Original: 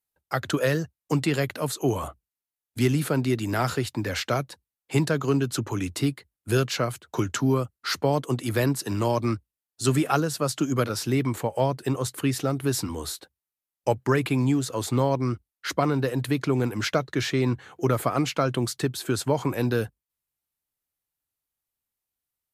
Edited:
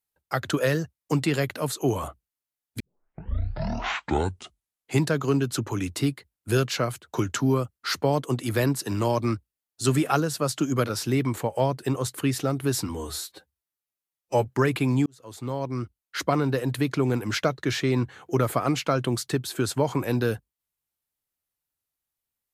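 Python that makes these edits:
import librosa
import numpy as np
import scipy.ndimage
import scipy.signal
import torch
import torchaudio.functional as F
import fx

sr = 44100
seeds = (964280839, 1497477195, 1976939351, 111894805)

y = fx.edit(x, sr, fx.tape_start(start_s=2.8, length_s=2.23),
    fx.stretch_span(start_s=12.95, length_s=1.0, factor=1.5),
    fx.fade_in_span(start_s=14.56, length_s=1.13), tone=tone)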